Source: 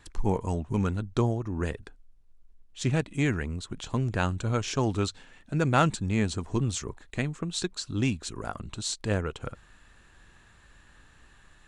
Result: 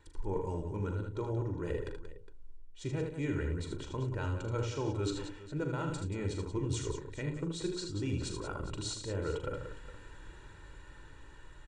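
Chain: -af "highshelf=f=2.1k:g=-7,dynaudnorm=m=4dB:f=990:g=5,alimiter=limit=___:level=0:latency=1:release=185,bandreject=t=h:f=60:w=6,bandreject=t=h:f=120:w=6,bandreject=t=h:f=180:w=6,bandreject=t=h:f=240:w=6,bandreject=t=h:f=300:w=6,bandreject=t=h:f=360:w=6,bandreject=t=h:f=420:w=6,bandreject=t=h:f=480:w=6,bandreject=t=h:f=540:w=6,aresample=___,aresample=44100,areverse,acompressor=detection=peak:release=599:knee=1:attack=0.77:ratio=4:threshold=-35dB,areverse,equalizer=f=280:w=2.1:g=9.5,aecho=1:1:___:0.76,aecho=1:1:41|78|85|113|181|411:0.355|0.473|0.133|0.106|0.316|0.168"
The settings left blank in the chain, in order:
-11.5dB, 22050, 2.1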